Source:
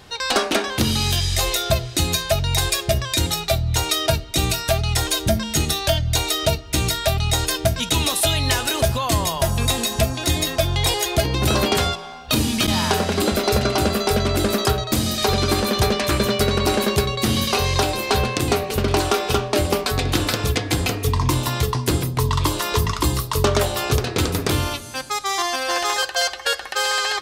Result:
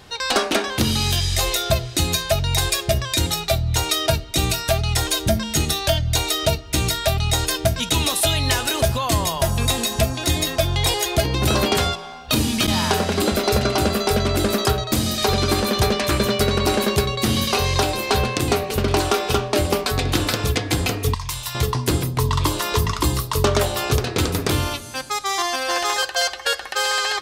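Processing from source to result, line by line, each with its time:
21.14–21.55 s: amplifier tone stack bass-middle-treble 10-0-10

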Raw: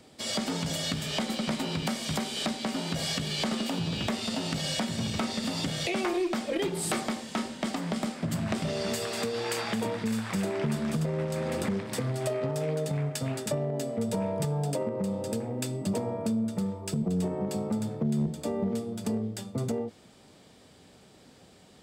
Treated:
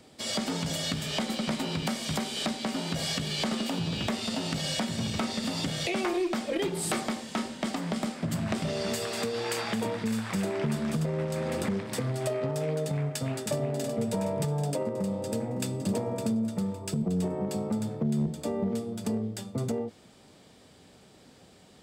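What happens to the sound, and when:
13.10–13.68 s: echo throw 370 ms, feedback 60%, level -8 dB
14.77–15.78 s: echo throw 560 ms, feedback 25%, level -8.5 dB

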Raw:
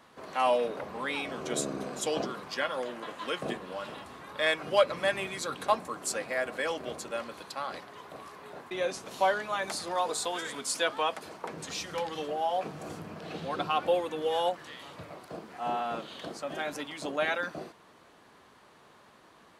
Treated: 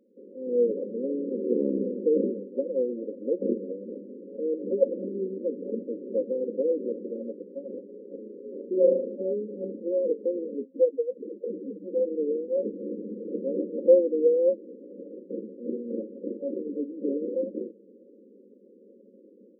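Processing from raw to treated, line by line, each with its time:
8.17–9.16 s: flutter echo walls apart 6.4 m, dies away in 0.7 s
10.65–11.89 s: spectral contrast enhancement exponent 2.4
whole clip: FFT band-pass 190–570 Hz; level rider gain up to 10 dB

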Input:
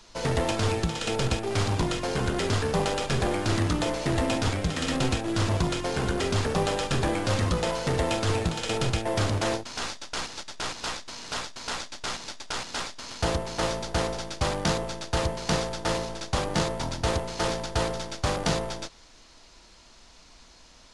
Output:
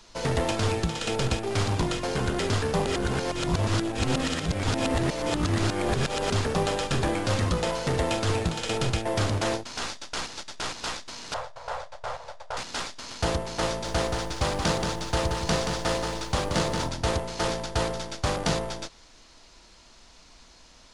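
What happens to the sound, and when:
2.86–6.30 s: reverse
11.34–12.57 s: FFT filter 130 Hz 0 dB, 190 Hz -16 dB, 310 Hz -23 dB, 520 Hz +8 dB, 900 Hz +4 dB, 2.6 kHz -10 dB, 6.3 kHz -15 dB
13.67–16.88 s: bit-crushed delay 178 ms, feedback 35%, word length 9-bit, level -5 dB

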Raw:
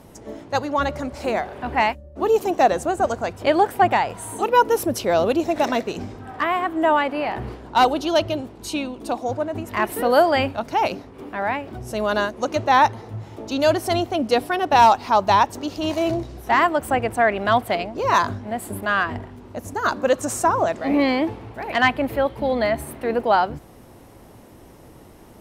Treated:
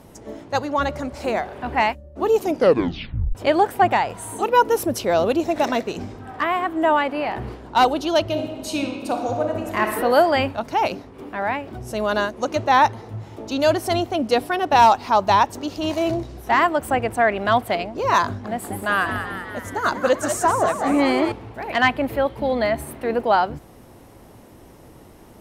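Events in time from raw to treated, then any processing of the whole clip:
2.41 s: tape stop 0.94 s
8.28–9.83 s: reverb throw, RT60 1.7 s, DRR 3 dB
18.25–21.32 s: frequency-shifting echo 192 ms, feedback 61%, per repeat +87 Hz, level -8 dB

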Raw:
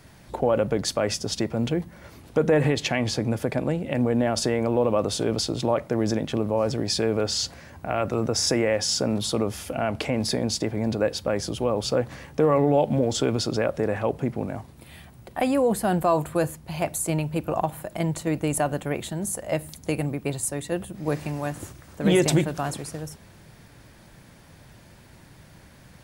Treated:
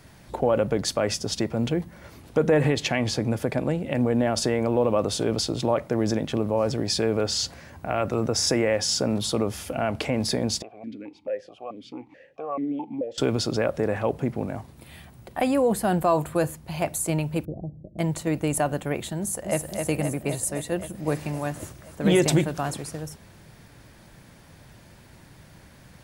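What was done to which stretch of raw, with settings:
10.62–13.18 s: stepped vowel filter 4.6 Hz
17.45–17.99 s: Gaussian low-pass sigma 22 samples
19.19–19.70 s: echo throw 260 ms, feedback 75%, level -4.5 dB

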